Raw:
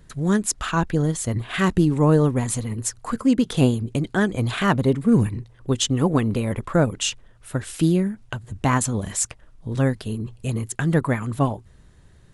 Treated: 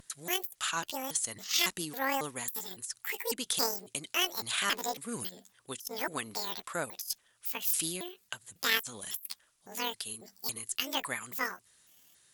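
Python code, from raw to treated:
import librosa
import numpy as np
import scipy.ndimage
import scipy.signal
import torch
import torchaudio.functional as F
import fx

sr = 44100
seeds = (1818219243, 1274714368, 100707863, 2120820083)

y = fx.pitch_trill(x, sr, semitones=10.0, every_ms=276)
y = np.diff(y, prepend=0.0)
y = fx.over_compress(y, sr, threshold_db=-32.0, ratio=-0.5)
y = fx.vibrato(y, sr, rate_hz=0.64, depth_cents=16.0)
y = fx.cheby_harmonics(y, sr, harmonics=(2,), levels_db=(-19,), full_scale_db=-12.5)
y = F.gain(torch.from_numpy(y), 2.0).numpy()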